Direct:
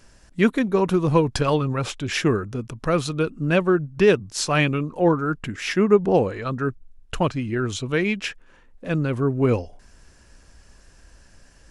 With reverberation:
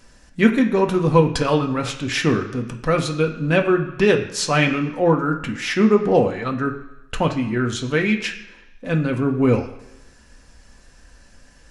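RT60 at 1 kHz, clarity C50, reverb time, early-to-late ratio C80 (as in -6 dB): 1.0 s, 9.5 dB, 0.95 s, 12.5 dB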